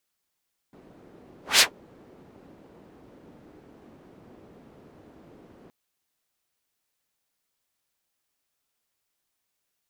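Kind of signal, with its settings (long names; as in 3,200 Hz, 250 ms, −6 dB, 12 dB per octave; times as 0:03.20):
pass-by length 4.97 s, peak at 0:00.87, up 0.18 s, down 0.12 s, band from 320 Hz, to 4,700 Hz, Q 1.1, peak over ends 37 dB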